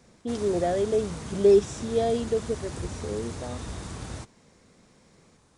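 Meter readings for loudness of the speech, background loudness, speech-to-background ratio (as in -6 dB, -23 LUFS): -26.0 LUFS, -38.0 LUFS, 12.0 dB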